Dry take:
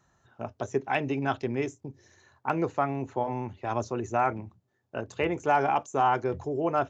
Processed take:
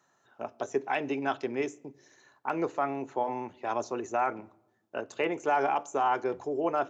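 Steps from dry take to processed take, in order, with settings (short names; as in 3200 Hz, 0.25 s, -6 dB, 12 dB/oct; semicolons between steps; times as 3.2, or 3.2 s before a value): HPF 290 Hz 12 dB/oct; limiter -17.5 dBFS, peak gain reduction 5 dB; shoebox room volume 3300 m³, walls furnished, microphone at 0.31 m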